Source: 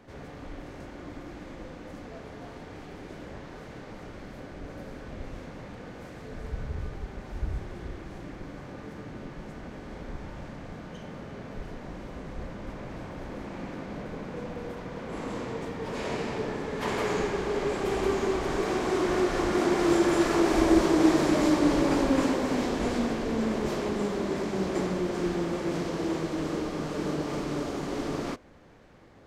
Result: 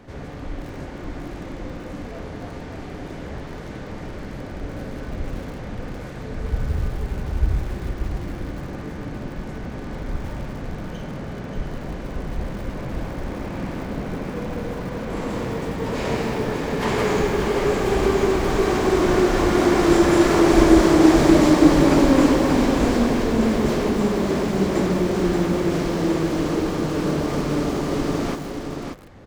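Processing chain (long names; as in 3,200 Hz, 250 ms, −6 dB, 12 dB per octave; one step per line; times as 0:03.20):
low-shelf EQ 170 Hz +6 dB
single-tap delay 582 ms −6 dB
feedback echo at a low word length 157 ms, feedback 35%, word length 6 bits, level −13.5 dB
level +6 dB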